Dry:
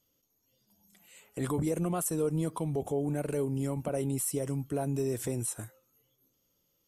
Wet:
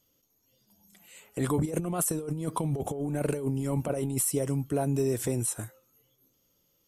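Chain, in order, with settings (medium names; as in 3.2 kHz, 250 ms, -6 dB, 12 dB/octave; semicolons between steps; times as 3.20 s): 1.65–4.25 s: compressor with a negative ratio -33 dBFS, ratio -0.5; trim +4 dB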